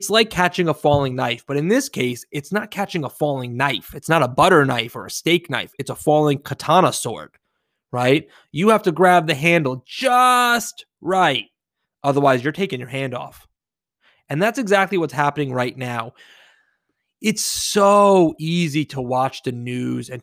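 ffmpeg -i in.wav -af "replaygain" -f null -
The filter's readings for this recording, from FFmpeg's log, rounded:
track_gain = -2.5 dB
track_peak = 0.581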